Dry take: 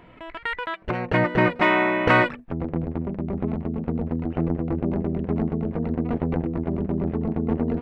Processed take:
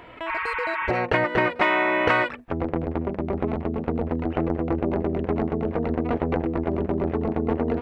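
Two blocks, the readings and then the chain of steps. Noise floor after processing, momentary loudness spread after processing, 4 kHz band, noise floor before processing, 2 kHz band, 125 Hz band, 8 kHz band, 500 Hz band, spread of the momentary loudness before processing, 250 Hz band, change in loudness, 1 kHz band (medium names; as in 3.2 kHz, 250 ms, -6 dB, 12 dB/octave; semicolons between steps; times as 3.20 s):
-39 dBFS, 7 LU, -0.5 dB, -47 dBFS, 0.0 dB, -3.0 dB, no reading, +1.5 dB, 10 LU, -1.5 dB, -0.5 dB, +0.5 dB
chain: high-pass 87 Hz 6 dB/octave; spectral replace 0.30–0.95 s, 890–3800 Hz after; peaking EQ 180 Hz -11 dB 1.2 oct; compression 4:1, threshold -26 dBFS, peak gain reduction 11 dB; trim +7.5 dB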